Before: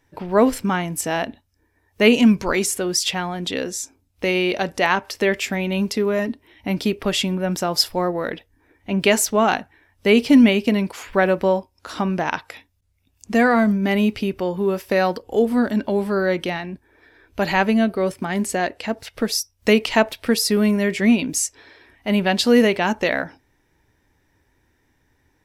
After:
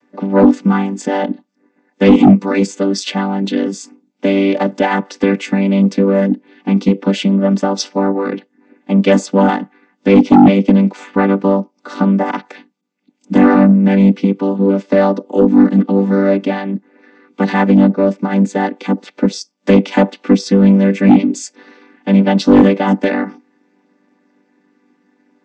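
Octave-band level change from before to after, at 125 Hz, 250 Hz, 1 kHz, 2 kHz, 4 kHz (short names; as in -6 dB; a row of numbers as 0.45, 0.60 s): +11.0, +9.5, +5.0, -0.5, -3.0 dB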